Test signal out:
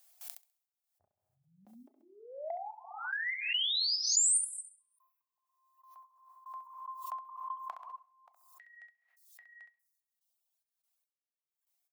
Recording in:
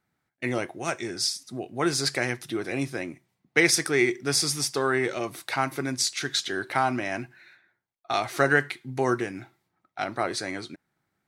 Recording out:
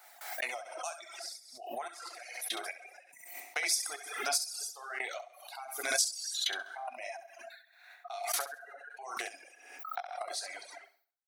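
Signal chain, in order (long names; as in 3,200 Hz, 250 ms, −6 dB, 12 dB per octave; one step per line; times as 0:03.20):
dynamic equaliser 1,800 Hz, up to −6 dB, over −47 dBFS, Q 7
gate pattern ".xx.x...x...x..x" 72 BPM −24 dB
high-pass with resonance 700 Hz, resonance Q 5.9
reverb whose tail is shaped and stops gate 370 ms falling, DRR 2.5 dB
downward compressor 12 to 1, threshold −36 dBFS
reverb reduction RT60 1.4 s
spectral tilt +4 dB per octave
repeating echo 67 ms, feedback 32%, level −5.5 dB
reverb reduction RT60 1.3 s
background raised ahead of every attack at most 61 dB per second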